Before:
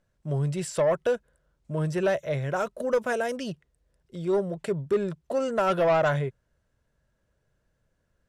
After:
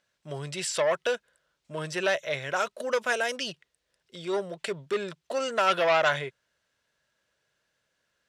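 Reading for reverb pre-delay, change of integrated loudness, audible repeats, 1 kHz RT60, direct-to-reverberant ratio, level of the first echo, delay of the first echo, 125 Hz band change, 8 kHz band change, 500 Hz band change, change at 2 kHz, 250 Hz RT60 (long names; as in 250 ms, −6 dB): no reverb audible, −1.0 dB, no echo audible, no reverb audible, no reverb audible, no echo audible, no echo audible, −12.0 dB, +5.5 dB, −3.0 dB, +5.0 dB, no reverb audible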